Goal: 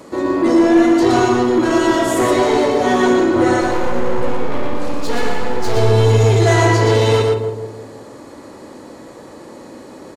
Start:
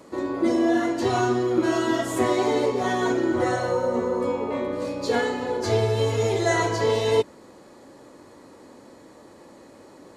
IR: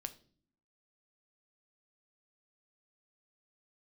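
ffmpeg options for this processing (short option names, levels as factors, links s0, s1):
-filter_complex "[0:a]acontrast=90,asettb=1/sr,asplit=3[s0][s1][s2];[s0]atrim=end=3.614[s3];[s1]atrim=start=3.61:end=5.77,asetpts=PTS-STARTPTS,afade=t=in:d=0.004:c=qsin,afade=t=out:st=2.156:d=0.004:c=qsin,aeval=exprs='max(val(0),0)':c=same[s4];[s2]atrim=start=5.766[s5];[s3][s4]acrossfade=d=0.004:c1=hsin:c2=qsin[s6];[s6][s5]acrossfade=d=0.004:c1=qsin:c2=hsin,asplit=2[s7][s8];[s8]adelay=164,lowpass=f=910:p=1,volume=0.473,asplit=2[s9][s10];[s10]adelay=164,lowpass=f=910:p=1,volume=0.5,asplit=2[s11][s12];[s12]adelay=164,lowpass=f=910:p=1,volume=0.5,asplit=2[s13][s14];[s14]adelay=164,lowpass=f=910:p=1,volume=0.5,asplit=2[s15][s16];[s16]adelay=164,lowpass=f=910:p=1,volume=0.5,asplit=2[s17][s18];[s18]adelay=164,lowpass=f=910:p=1,volume=0.5[s19];[s7][s9][s11][s13][s15][s17][s19]amix=inputs=7:normalize=0,asoftclip=type=tanh:threshold=0.299,asplit=2[s20][s21];[1:a]atrim=start_sample=2205,adelay=119[s22];[s21][s22]afir=irnorm=-1:irlink=0,volume=0.891[s23];[s20][s23]amix=inputs=2:normalize=0,volume=1.19"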